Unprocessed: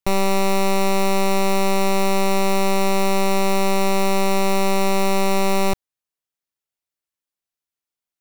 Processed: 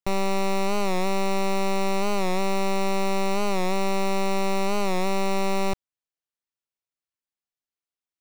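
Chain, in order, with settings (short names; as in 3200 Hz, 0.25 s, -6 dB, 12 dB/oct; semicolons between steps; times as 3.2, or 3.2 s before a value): bell 15000 Hz -10 dB 0.84 oct; record warp 45 rpm, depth 100 cents; gain -5.5 dB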